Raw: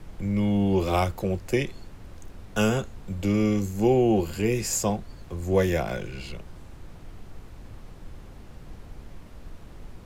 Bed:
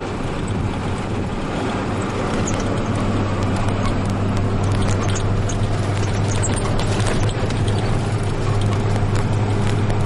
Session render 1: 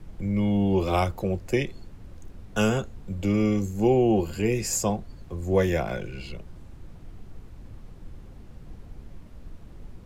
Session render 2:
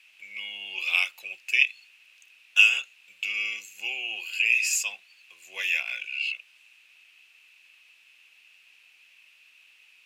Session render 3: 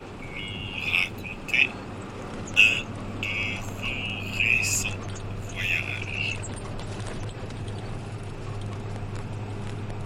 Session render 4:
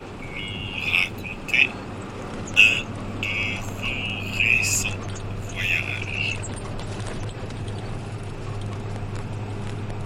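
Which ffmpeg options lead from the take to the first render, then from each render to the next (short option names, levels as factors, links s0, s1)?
-af "afftdn=nr=6:nf=-45"
-af "highpass=f=2600:t=q:w=12"
-filter_complex "[1:a]volume=0.178[s0];[0:a][s0]amix=inputs=2:normalize=0"
-af "volume=1.41"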